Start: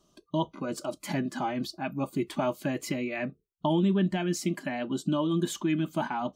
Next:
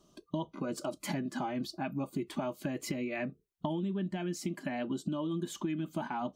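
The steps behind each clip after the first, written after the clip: bell 250 Hz +3 dB 2.8 oct; compressor, threshold -32 dBFS, peak gain reduction 13 dB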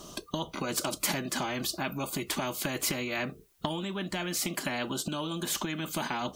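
high shelf 7800 Hz +5 dB; spectral compressor 2:1; gain +6.5 dB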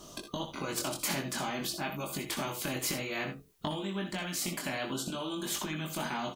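chorus 0.52 Hz, delay 20 ms, depth 3 ms; on a send: early reflections 63 ms -10.5 dB, 77 ms -13 dB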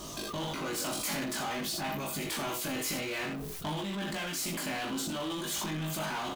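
doubler 19 ms -2.5 dB; power-law curve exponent 0.5; sustainer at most 20 dB/s; gain -8.5 dB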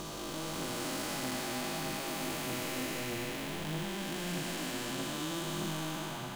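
time blur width 0.938 s; phaser 1.6 Hz, delay 4 ms, feedback 29%; shoebox room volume 1000 m³, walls furnished, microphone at 0.73 m

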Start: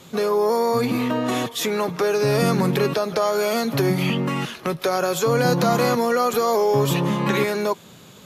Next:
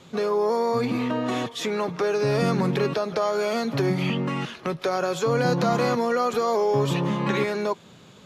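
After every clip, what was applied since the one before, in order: air absorption 64 m; gain -3 dB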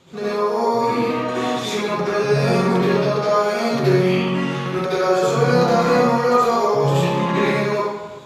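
reverb RT60 1.2 s, pre-delay 63 ms, DRR -10 dB; gain -4 dB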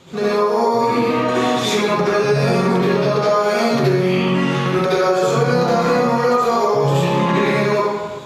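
compressor, threshold -19 dBFS, peak gain reduction 8.5 dB; gain +6.5 dB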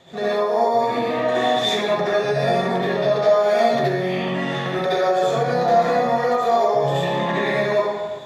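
small resonant body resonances 680/1800/3500 Hz, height 14 dB, ringing for 20 ms; gain -8.5 dB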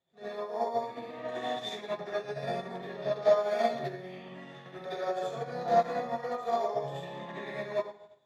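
upward expander 2.5:1, over -31 dBFS; gain -6 dB

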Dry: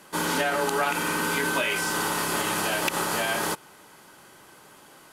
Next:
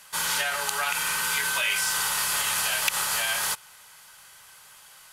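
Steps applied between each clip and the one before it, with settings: passive tone stack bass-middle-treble 10-0-10; gain +5.5 dB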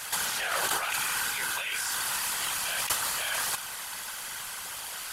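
negative-ratio compressor -35 dBFS, ratio -1; whisperiser; gain +4.5 dB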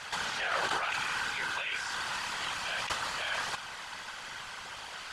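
air absorption 130 m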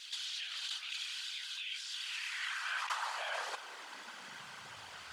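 high-pass sweep 3500 Hz -> 73 Hz, 1.89–5.08; bit-crush 11-bit; vibrato 9 Hz 38 cents; gain -7 dB

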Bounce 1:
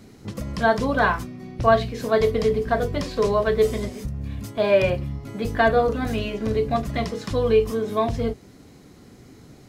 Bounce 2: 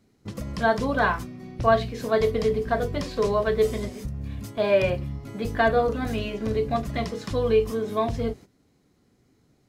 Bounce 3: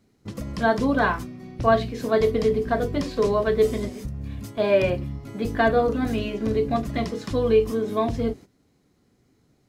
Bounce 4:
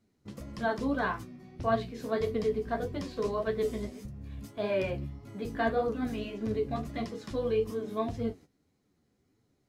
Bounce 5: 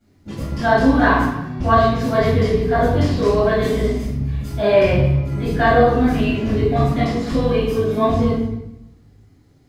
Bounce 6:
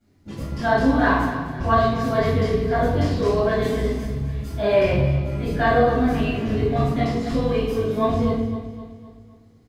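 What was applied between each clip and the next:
gate -39 dBFS, range -14 dB; gain -2.5 dB
dynamic EQ 290 Hz, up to +7 dB, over -40 dBFS, Q 1.9
flange 1.7 Hz, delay 8.3 ms, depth 6.8 ms, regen +38%; gain -5.5 dB
reverb RT60 0.90 s, pre-delay 5 ms, DRR -13 dB
feedback echo 0.257 s, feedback 47%, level -13 dB; gain -4 dB

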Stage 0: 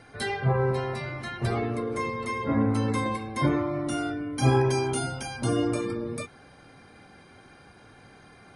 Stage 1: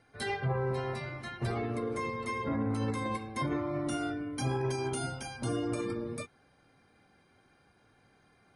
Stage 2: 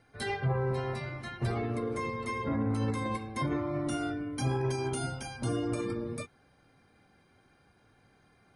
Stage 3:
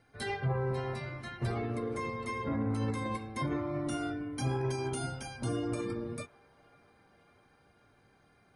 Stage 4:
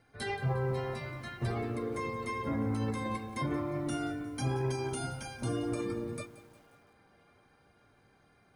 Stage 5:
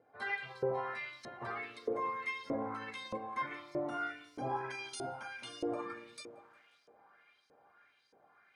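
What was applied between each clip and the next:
limiter -21.5 dBFS, peak gain reduction 11.5 dB; upward expander 1.5:1, over -50 dBFS; gain -1.5 dB
low shelf 160 Hz +4 dB
band-limited delay 0.545 s, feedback 72%, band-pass 1200 Hz, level -22.5 dB; gain -2 dB
lo-fi delay 0.178 s, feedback 55%, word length 9-bit, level -15 dB
LFO band-pass saw up 1.6 Hz 460–5700 Hz; gain +7 dB

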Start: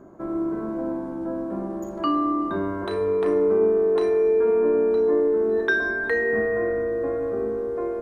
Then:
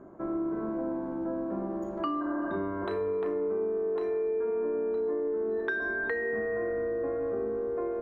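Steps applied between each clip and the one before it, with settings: tone controls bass -2 dB, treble -14 dB; spectral repair 2.24–2.51, 540–1800 Hz after; compressor, threshold -26 dBFS, peak gain reduction 9.5 dB; gain -2 dB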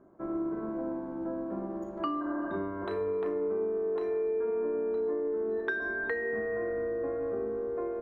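upward expander 1.5:1, over -46 dBFS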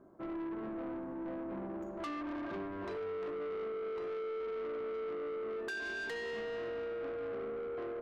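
soft clip -36 dBFS, distortion -10 dB; gain -1 dB

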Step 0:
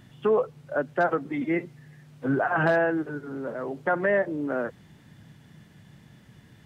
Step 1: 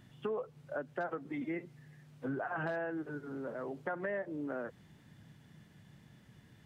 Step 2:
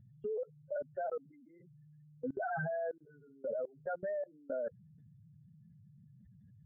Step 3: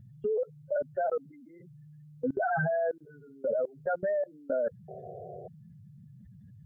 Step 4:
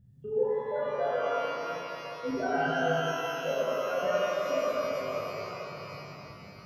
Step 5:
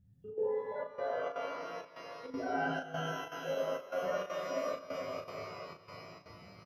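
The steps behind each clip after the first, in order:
compressor 3:1, threshold -29 dBFS, peak gain reduction 8 dB; gain -7 dB
spectral contrast raised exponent 3; fixed phaser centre 1600 Hz, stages 8; level quantiser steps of 24 dB; gain +12 dB
painted sound noise, 4.88–5.48, 360–760 Hz -52 dBFS; gain +8 dB
shimmer reverb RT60 3.7 s, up +12 st, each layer -8 dB, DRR -10.5 dB; gain -9 dB
step gate "xxxx.xxxxxx.." 199 bpm -12 dB; early reflections 11 ms -6 dB, 37 ms -5.5 dB; gain -8 dB

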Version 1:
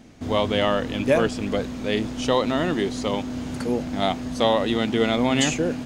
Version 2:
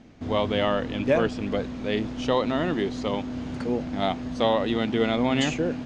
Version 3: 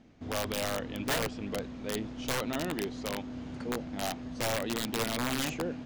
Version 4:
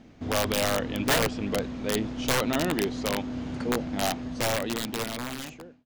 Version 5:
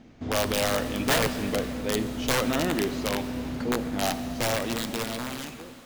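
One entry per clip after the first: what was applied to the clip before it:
air absorption 110 m; gain -2 dB
wrapped overs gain 16 dB; gain -8 dB
ending faded out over 1.84 s; gain +7 dB
plate-style reverb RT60 3.3 s, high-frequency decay 0.95×, DRR 9 dB

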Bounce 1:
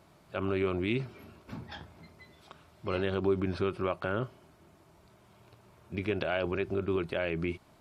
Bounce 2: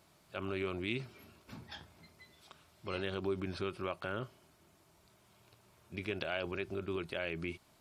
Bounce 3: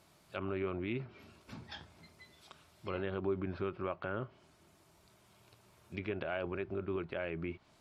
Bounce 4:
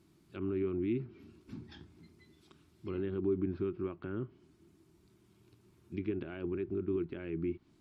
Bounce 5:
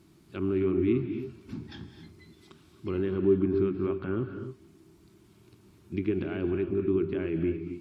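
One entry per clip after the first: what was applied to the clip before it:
high shelf 2400 Hz +10.5 dB; gain -8 dB
treble ducked by the level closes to 1800 Hz, closed at -36.5 dBFS; gain +1 dB
resonant low shelf 440 Hz +9 dB, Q 3; gain -8 dB
non-linear reverb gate 0.3 s rising, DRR 7.5 dB; gain +7 dB

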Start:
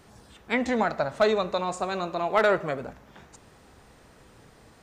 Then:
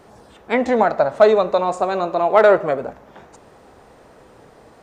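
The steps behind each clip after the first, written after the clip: bell 590 Hz +11 dB 2.5 oct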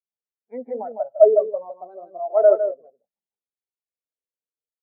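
echo 0.156 s -4 dB; spectral expander 2.5:1; gain -1 dB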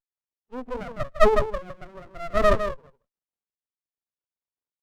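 running maximum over 33 samples

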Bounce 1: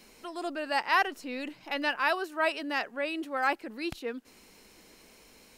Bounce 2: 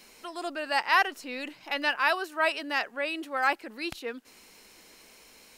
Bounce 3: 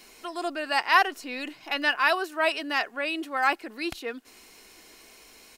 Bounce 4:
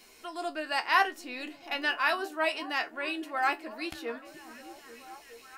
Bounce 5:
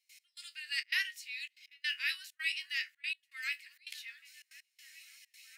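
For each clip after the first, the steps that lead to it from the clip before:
low shelf 490 Hz -8 dB; gain +3.5 dB
comb 2.8 ms, depth 31%; gain +2 dB
resonator 78 Hz, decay 0.15 s, harmonics all, mix 80%; delay with a stepping band-pass 0.418 s, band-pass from 190 Hz, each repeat 0.7 oct, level -8.5 dB
step gate ".x..xxxxx.xxxxxx" 163 bpm -24 dB; elliptic high-pass 2000 Hz, stop band 60 dB

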